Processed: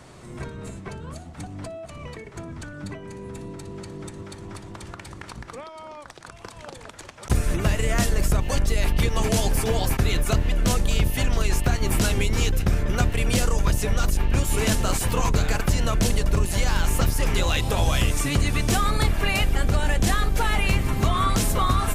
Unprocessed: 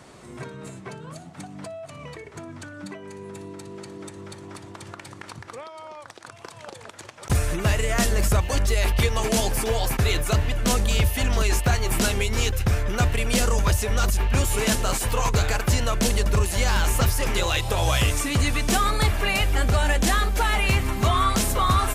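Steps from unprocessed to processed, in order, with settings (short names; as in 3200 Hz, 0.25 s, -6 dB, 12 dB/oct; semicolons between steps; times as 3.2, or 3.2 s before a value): octaver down 1 oct, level +2 dB; compressor, threshold -16 dBFS, peak gain reduction 5.5 dB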